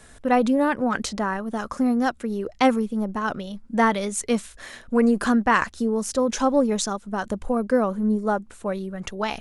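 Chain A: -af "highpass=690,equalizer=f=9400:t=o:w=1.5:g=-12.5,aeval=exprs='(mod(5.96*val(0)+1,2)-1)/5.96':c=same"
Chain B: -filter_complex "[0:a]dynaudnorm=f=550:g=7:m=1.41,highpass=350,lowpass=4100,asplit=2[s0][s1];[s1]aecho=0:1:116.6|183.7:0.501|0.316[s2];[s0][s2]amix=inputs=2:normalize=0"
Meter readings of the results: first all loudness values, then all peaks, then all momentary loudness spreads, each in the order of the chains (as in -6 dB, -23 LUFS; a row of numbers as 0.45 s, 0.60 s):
-29.5 LUFS, -23.0 LUFS; -15.5 dBFS, -3.5 dBFS; 12 LU, 11 LU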